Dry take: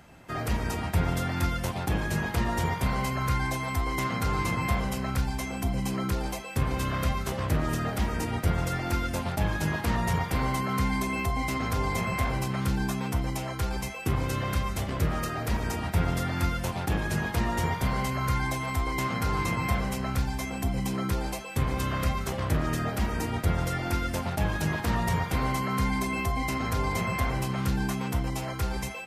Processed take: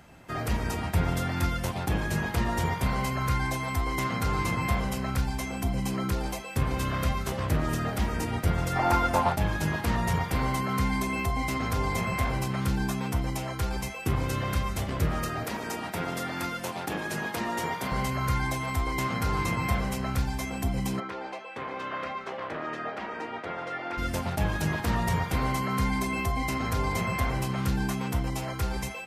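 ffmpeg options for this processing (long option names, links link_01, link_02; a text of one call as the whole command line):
ffmpeg -i in.wav -filter_complex "[0:a]asplit=3[link_01][link_02][link_03];[link_01]afade=type=out:start_time=8.75:duration=0.02[link_04];[link_02]equalizer=frequency=890:width_type=o:width=1.4:gain=14.5,afade=type=in:start_time=8.75:duration=0.02,afade=type=out:start_time=9.32:duration=0.02[link_05];[link_03]afade=type=in:start_time=9.32:duration=0.02[link_06];[link_04][link_05][link_06]amix=inputs=3:normalize=0,asettb=1/sr,asplit=3[link_07][link_08][link_09];[link_07]atrim=end=15.444[link_10];[link_08]atrim=start=15.44:end=17.92,asetpts=PTS-STARTPTS,afade=type=in:duration=0.004:curve=qsin,afade=type=out:start_time=2.476:duration=0.004:curve=qsin,highpass=230[link_11];[link_09]atrim=start=17.916[link_12];[link_10][link_11]acrossfade=duration=0.004:curve1=hsin:curve2=qsin[link_13];[link_13][link_12]acrossfade=duration=0.004:curve1=qsin:curve2=hsin,asplit=3[link_14][link_15][link_16];[link_14]afade=type=out:start_time=20.99:duration=0.02[link_17];[link_15]highpass=420,lowpass=2600,afade=type=in:start_time=20.99:duration=0.02,afade=type=out:start_time=23.97:duration=0.02[link_18];[link_16]afade=type=in:start_time=23.97:duration=0.02[link_19];[link_17][link_18][link_19]amix=inputs=3:normalize=0" out.wav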